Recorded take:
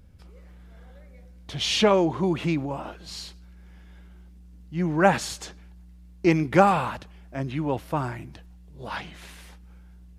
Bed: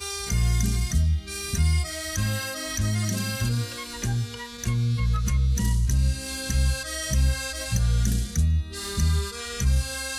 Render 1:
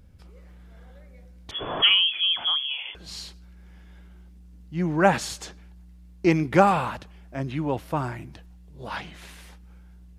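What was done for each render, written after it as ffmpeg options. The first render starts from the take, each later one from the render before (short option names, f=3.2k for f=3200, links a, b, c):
-filter_complex "[0:a]asettb=1/sr,asplit=3[a][b][c];[a]atrim=end=1.514[d];[b]atrim=start=1.51:end=2.95,asetpts=PTS-STARTPTS,afade=t=in:d=0.004:c=qsin,afade=t=out:st=1.436:d=0.004:c=qsin,lowpass=f=3k:t=q:w=0.5098,lowpass=f=3k:t=q:w=0.6013,lowpass=f=3k:t=q:w=0.9,lowpass=f=3k:t=q:w=2.563,afreqshift=-3500[e];[c]atrim=start=2.946[f];[d][e]acrossfade=d=0.004:c1=hsin:c2=qsin[g];[g][f]acrossfade=d=0.004:c1=qsin:c2=hsin"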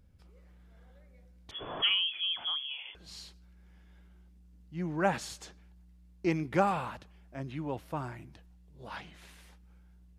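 -af "volume=-9.5dB"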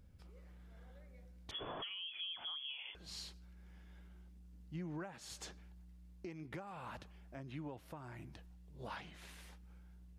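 -af "acompressor=threshold=-38dB:ratio=16,alimiter=level_in=11.5dB:limit=-24dB:level=0:latency=1:release=459,volume=-11.5dB"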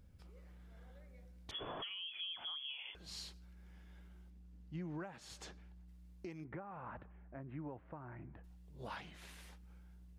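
-filter_complex "[0:a]asettb=1/sr,asplit=3[a][b][c];[a]atrim=end=4.304[d];[b]atrim=start=4.3:end=5.88,asetpts=PTS-STARTPTS,afade=t=in:d=0.004:c=qsin,afade=t=out:st=1.576:d=0.004:c=qsin,highshelf=f=5.8k:g=-8[e];[c]atrim=start=5.876[f];[d][e]acrossfade=d=0.004:c1=hsin:c2=qsin[g];[g][f]acrossfade=d=0.004:c1=qsin:c2=hsin,asettb=1/sr,asplit=3[h][i][j];[h]atrim=end=6.444[k];[i]atrim=start=6.44:end=8.44,asetpts=PTS-STARTPTS,afade=t=in:d=0.004:c=qsin,afade=t=out:st=1.996:d=0.004:c=qsin,lowpass=f=1.9k:w=0.5412,lowpass=f=1.9k:w=1.3066[l];[j]atrim=start=8.436[m];[k][l]acrossfade=d=0.004:c1=hsin:c2=qsin[n];[n][m]acrossfade=d=0.004:c1=qsin:c2=hsin"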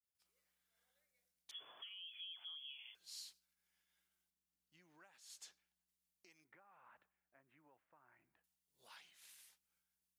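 -af "agate=range=-33dB:threshold=-53dB:ratio=3:detection=peak,aderivative"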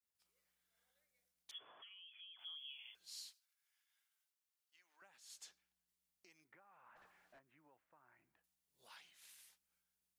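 -filter_complex "[0:a]asettb=1/sr,asplit=3[a][b][c];[a]atrim=end=1.584[d];[b]atrim=start=1.58:end=2.39,asetpts=PTS-STARTPTS,afade=t=in:d=0.004:c=qsin,afade=t=out:st=0.806:d=0.004:c=qsin,lowpass=2.3k[e];[c]atrim=start=2.386[f];[d][e]acrossfade=d=0.004:c1=hsin:c2=qsin[g];[g][f]acrossfade=d=0.004:c1=qsin:c2=hsin,asettb=1/sr,asplit=3[h][i][j];[h]atrim=end=3.304[k];[i]atrim=start=3.3:end=5.02,asetpts=PTS-STARTPTS,afade=t=in:d=0.004:c=qsin,afade=t=out:st=1.716:d=0.004:c=qsin,highpass=1k[l];[j]atrim=start=5.016[m];[k][l]acrossfade=d=0.004:c1=hsin:c2=qsin[n];[n][m]acrossfade=d=0.004:c1=qsin:c2=hsin,asplit=3[o][p][q];[o]afade=t=out:st=6.95:d=0.02[r];[p]asplit=2[s][t];[t]highpass=f=720:p=1,volume=35dB,asoftclip=type=tanh:threshold=-55.5dB[u];[s][u]amix=inputs=2:normalize=0,lowpass=f=1.4k:p=1,volume=-6dB,afade=t=in:st=6.95:d=0.02,afade=t=out:st=7.38:d=0.02[v];[q]afade=t=in:st=7.38:d=0.02[w];[r][v][w]amix=inputs=3:normalize=0"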